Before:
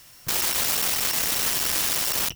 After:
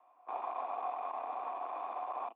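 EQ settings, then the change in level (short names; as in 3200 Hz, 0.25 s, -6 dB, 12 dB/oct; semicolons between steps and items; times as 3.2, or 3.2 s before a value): vocal tract filter a; steep high-pass 240 Hz 72 dB/oct; +7.5 dB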